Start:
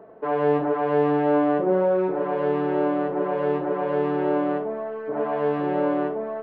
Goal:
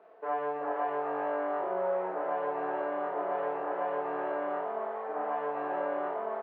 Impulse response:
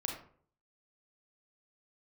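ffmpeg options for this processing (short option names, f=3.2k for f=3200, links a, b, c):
-filter_complex "[0:a]acompressor=threshold=-22dB:ratio=6,aeval=exprs='sgn(val(0))*max(abs(val(0))-0.00106,0)':c=same,highpass=560,lowpass=2.2k,asplit=8[a][b][c][d][e][f][g][h];[b]adelay=378,afreqshift=100,volume=-7dB[i];[c]adelay=756,afreqshift=200,volume=-12dB[j];[d]adelay=1134,afreqshift=300,volume=-17.1dB[k];[e]adelay=1512,afreqshift=400,volume=-22.1dB[l];[f]adelay=1890,afreqshift=500,volume=-27.1dB[m];[g]adelay=2268,afreqshift=600,volume=-32.2dB[n];[h]adelay=2646,afreqshift=700,volume=-37.2dB[o];[a][i][j][k][l][m][n][o]amix=inputs=8:normalize=0[p];[1:a]atrim=start_sample=2205,asetrate=66150,aresample=44100[q];[p][q]afir=irnorm=-1:irlink=0,volume=-1.5dB"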